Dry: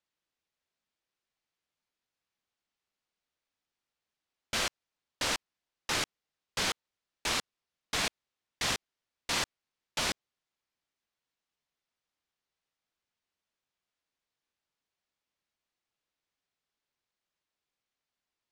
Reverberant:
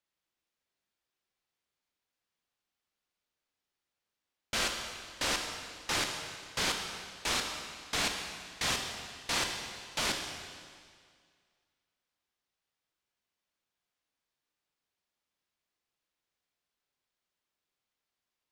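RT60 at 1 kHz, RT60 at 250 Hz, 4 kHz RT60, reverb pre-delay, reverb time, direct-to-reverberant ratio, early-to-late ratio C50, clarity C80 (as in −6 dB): 2.0 s, 2.0 s, 1.9 s, 24 ms, 2.0 s, 3.0 dB, 4.5 dB, 6.0 dB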